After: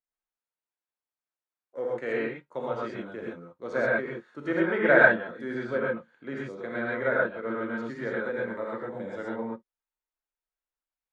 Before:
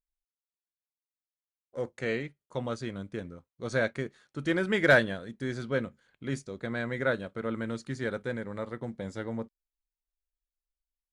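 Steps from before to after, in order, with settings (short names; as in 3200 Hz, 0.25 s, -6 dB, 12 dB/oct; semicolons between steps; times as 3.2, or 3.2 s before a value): treble ducked by the level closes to 2700 Hz, closed at -25 dBFS; three-band isolator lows -18 dB, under 250 Hz, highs -14 dB, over 2200 Hz; non-linear reverb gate 0.15 s rising, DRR -4.5 dB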